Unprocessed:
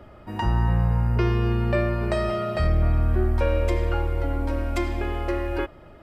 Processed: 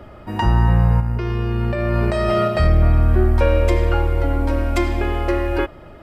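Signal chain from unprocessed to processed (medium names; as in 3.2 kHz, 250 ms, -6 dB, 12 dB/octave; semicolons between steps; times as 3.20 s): 1.00–2.48 s: compressor with a negative ratio -26 dBFS, ratio -1; trim +6.5 dB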